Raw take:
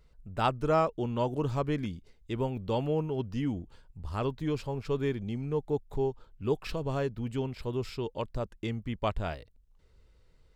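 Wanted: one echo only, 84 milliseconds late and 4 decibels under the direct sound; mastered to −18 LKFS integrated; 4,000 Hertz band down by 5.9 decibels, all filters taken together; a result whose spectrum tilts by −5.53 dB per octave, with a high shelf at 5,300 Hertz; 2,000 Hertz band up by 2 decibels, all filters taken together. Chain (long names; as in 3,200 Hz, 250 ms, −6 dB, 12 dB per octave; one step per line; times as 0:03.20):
parametric band 2,000 Hz +6.5 dB
parametric band 4,000 Hz −9 dB
high-shelf EQ 5,300 Hz −7.5 dB
single-tap delay 84 ms −4 dB
level +13 dB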